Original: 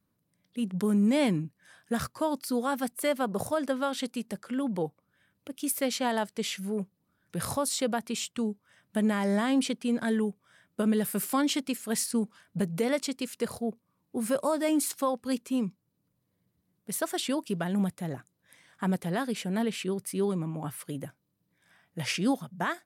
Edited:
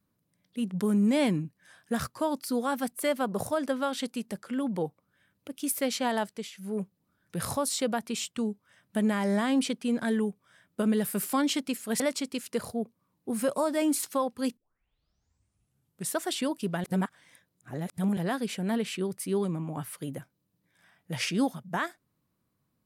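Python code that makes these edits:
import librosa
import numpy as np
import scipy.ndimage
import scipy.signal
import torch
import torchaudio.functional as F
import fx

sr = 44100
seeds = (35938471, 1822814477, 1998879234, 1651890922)

y = fx.edit(x, sr, fx.fade_down_up(start_s=6.27, length_s=0.5, db=-14.5, fade_s=0.25),
    fx.cut(start_s=12.0, length_s=0.87),
    fx.tape_start(start_s=15.44, length_s=1.62),
    fx.reverse_span(start_s=17.71, length_s=1.33), tone=tone)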